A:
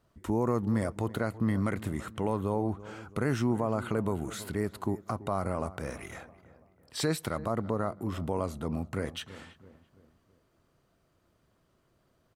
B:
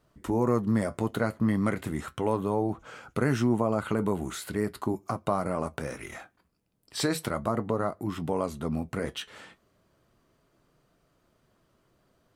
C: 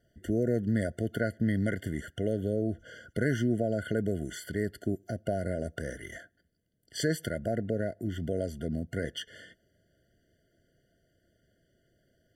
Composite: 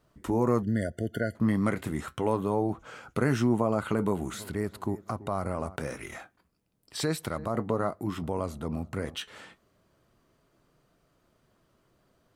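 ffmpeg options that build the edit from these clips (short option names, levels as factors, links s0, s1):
-filter_complex "[0:a]asplit=3[s0][s1][s2];[1:a]asplit=5[s3][s4][s5][s6][s7];[s3]atrim=end=0.632[s8];[2:a]atrim=start=0.628:end=1.352[s9];[s4]atrim=start=1.348:end=4.342[s10];[s0]atrim=start=4.338:end=5.762[s11];[s5]atrim=start=5.758:end=6.972[s12];[s1]atrim=start=6.968:end=7.552[s13];[s6]atrim=start=7.548:end=8.232[s14];[s2]atrim=start=8.228:end=9.152[s15];[s7]atrim=start=9.148[s16];[s8][s9]acrossfade=d=0.004:c1=hsin:c2=hsin[s17];[s17][s10]acrossfade=d=0.004:c1=hsin:c2=hsin[s18];[s18][s11]acrossfade=d=0.004:c1=hsin:c2=hsin[s19];[s19][s12]acrossfade=d=0.004:c1=hsin:c2=hsin[s20];[s20][s13]acrossfade=d=0.004:c1=hsin:c2=hsin[s21];[s21][s14]acrossfade=d=0.004:c1=hsin:c2=hsin[s22];[s22][s15]acrossfade=d=0.004:c1=hsin:c2=hsin[s23];[s23][s16]acrossfade=d=0.004:c1=hsin:c2=hsin"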